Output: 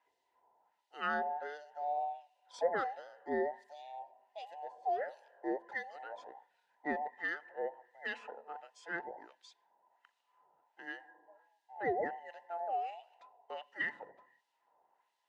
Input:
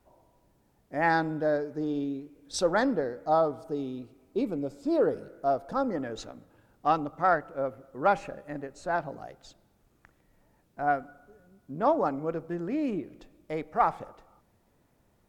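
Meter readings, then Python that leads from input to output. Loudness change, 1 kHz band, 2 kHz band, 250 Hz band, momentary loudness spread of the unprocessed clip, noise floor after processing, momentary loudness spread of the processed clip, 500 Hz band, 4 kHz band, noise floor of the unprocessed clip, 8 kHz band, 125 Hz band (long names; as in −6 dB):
−10.0 dB, −9.5 dB, −4.5 dB, −16.5 dB, 14 LU, −81 dBFS, 15 LU, −11.0 dB, −9.0 dB, −68 dBFS, below −15 dB, −23.0 dB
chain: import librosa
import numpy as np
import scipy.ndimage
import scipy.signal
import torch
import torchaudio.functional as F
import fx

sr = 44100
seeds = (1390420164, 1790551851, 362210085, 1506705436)

y = fx.band_invert(x, sr, width_hz=1000)
y = fx.peak_eq(y, sr, hz=130.0, db=-2.5, octaves=3.0)
y = fx.filter_lfo_bandpass(y, sr, shape='sine', hz=1.4, low_hz=670.0, high_hz=3800.0, q=1.1)
y = F.gain(torch.from_numpy(y), -4.0).numpy()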